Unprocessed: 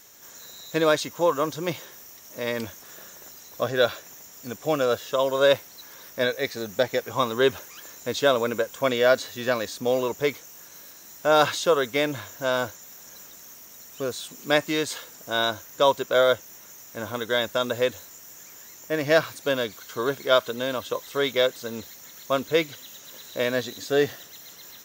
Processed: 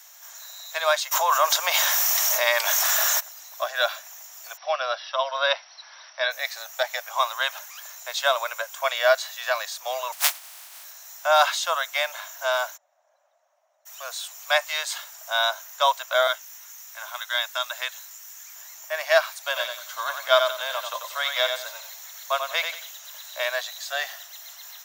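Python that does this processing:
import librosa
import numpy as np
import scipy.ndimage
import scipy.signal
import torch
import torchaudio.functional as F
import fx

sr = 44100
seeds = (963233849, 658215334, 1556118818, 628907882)

y = fx.env_flatten(x, sr, amount_pct=70, at=(1.11, 3.19), fade=0.02)
y = fx.brickwall_lowpass(y, sr, high_hz=5900.0, at=(4.56, 6.3), fade=0.02)
y = fx.spec_flatten(y, sr, power=0.13, at=(10.12, 10.83), fade=0.02)
y = fx.bandpass_q(y, sr, hz=580.0, q=5.1, at=(12.76, 13.85), fade=0.02)
y = fx.bessel_highpass(y, sr, hz=1100.0, order=2, at=(16.27, 18.56))
y = fx.echo_feedback(y, sr, ms=91, feedback_pct=29, wet_db=-6, at=(19.39, 22.91))
y = scipy.signal.sosfilt(scipy.signal.butter(12, 620.0, 'highpass', fs=sr, output='sos'), y)
y = F.gain(torch.from_numpy(y), 2.5).numpy()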